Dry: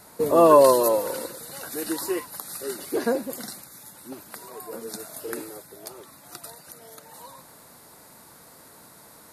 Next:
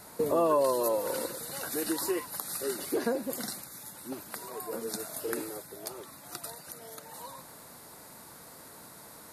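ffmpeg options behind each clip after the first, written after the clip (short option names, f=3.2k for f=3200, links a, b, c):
-af "acompressor=threshold=-28dB:ratio=2.5"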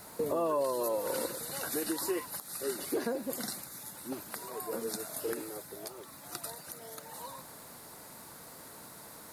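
-af "alimiter=limit=-22dB:level=0:latency=1:release=355,acrusher=bits=9:mix=0:aa=0.000001"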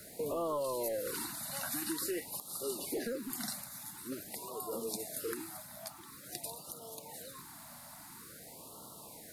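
-filter_complex "[0:a]acrossover=split=130|1500[a][b][c];[b]asoftclip=type=tanh:threshold=-30.5dB[d];[a][d][c]amix=inputs=3:normalize=0,afftfilt=real='re*(1-between(b*sr/1024,380*pow(2000/380,0.5+0.5*sin(2*PI*0.48*pts/sr))/1.41,380*pow(2000/380,0.5+0.5*sin(2*PI*0.48*pts/sr))*1.41))':imag='im*(1-between(b*sr/1024,380*pow(2000/380,0.5+0.5*sin(2*PI*0.48*pts/sr))/1.41,380*pow(2000/380,0.5+0.5*sin(2*PI*0.48*pts/sr))*1.41))':win_size=1024:overlap=0.75,volume=-1dB"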